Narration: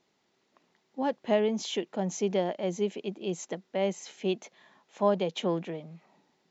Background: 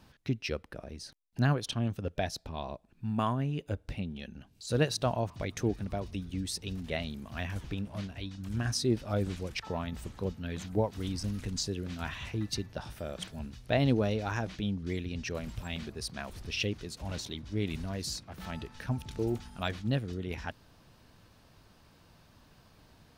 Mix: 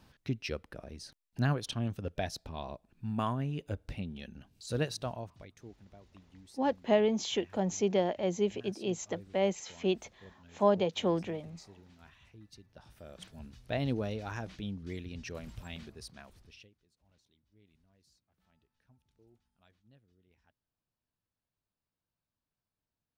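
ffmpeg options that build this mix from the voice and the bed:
-filter_complex "[0:a]adelay=5600,volume=-0.5dB[a];[1:a]volume=12dB,afade=t=out:st=4.55:d=1:silence=0.125893,afade=t=in:st=12.61:d=1:silence=0.188365,afade=t=out:st=15.69:d=1.01:silence=0.0421697[b];[a][b]amix=inputs=2:normalize=0"

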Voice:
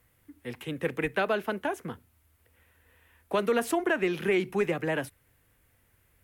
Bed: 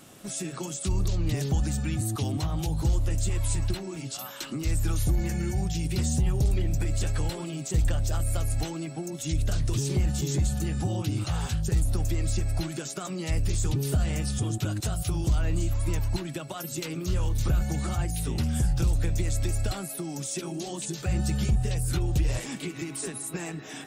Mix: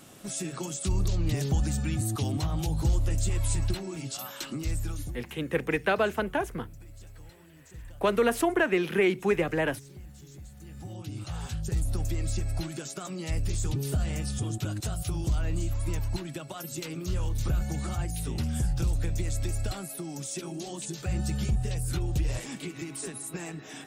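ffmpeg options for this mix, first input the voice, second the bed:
-filter_complex "[0:a]adelay=4700,volume=2dB[a];[1:a]volume=17.5dB,afade=t=out:st=4.43:d=0.8:silence=0.0944061,afade=t=in:st=10.55:d=1.41:silence=0.125893[b];[a][b]amix=inputs=2:normalize=0"

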